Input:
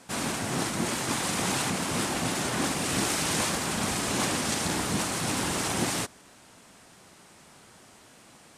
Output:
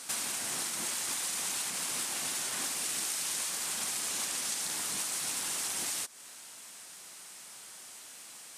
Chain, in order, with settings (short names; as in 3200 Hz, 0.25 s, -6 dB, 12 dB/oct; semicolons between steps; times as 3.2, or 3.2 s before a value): tilt +4 dB/oct; compressor 6:1, threshold -30 dBFS, peak gain reduction 13.5 dB; pre-echo 0.144 s -12.5 dB; gain -2.5 dB